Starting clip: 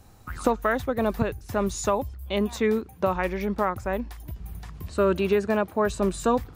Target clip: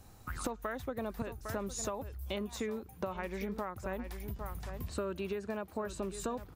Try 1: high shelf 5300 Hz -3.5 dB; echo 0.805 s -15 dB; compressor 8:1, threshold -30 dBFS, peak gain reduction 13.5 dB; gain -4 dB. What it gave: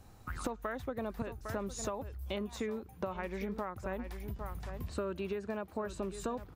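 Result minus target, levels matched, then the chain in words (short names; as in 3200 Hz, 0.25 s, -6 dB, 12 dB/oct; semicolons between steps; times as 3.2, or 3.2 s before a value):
8000 Hz band -3.5 dB
high shelf 5300 Hz +3 dB; echo 0.805 s -15 dB; compressor 8:1, threshold -30 dBFS, peak gain reduction 13.5 dB; gain -4 dB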